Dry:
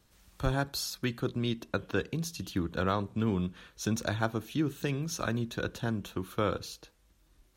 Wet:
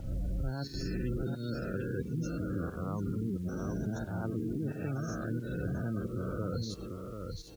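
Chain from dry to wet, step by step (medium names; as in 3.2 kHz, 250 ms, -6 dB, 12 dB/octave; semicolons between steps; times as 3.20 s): reverse spectral sustain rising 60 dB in 2.23 s; reverse; compression 10:1, threshold -37 dBFS, peak gain reduction 16.5 dB; reverse; delay 741 ms -5 dB; volume shaper 89 bpm, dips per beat 1, -11 dB, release 168 ms; spectral gate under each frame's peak -15 dB strong; bass shelf 330 Hz +11.5 dB; bit crusher 10-bit; trim -1.5 dB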